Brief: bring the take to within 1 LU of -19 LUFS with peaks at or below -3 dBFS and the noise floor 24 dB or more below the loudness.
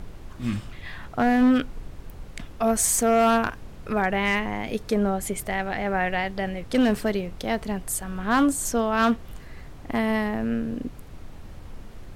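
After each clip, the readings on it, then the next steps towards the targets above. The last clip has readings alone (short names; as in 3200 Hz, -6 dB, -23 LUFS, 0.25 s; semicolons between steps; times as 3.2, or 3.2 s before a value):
clipped 0.9%; flat tops at -14.0 dBFS; noise floor -42 dBFS; noise floor target -49 dBFS; loudness -24.5 LUFS; peak -14.0 dBFS; loudness target -19.0 LUFS
-> clip repair -14 dBFS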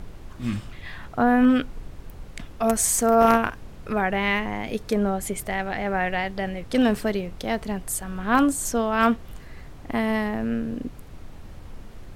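clipped 0.0%; noise floor -42 dBFS; noise floor target -48 dBFS
-> noise print and reduce 6 dB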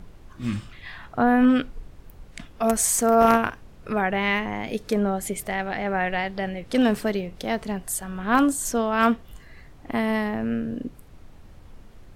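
noise floor -48 dBFS; loudness -24.0 LUFS; peak -5.0 dBFS; loudness target -19.0 LUFS
-> gain +5 dB; limiter -3 dBFS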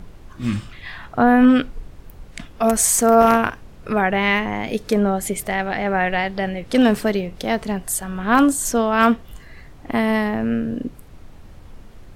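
loudness -19.0 LUFS; peak -3.0 dBFS; noise floor -43 dBFS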